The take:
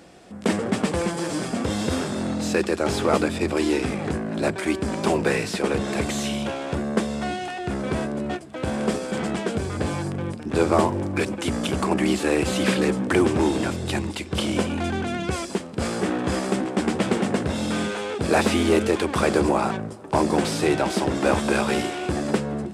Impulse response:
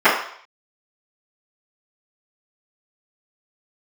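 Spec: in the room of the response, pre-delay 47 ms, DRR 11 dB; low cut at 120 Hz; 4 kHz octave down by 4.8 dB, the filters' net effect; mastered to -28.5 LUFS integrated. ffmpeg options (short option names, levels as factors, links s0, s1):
-filter_complex "[0:a]highpass=120,equalizer=f=4000:t=o:g=-6.5,asplit=2[s0][s1];[1:a]atrim=start_sample=2205,adelay=47[s2];[s1][s2]afir=irnorm=-1:irlink=0,volume=0.0126[s3];[s0][s3]amix=inputs=2:normalize=0,volume=0.631"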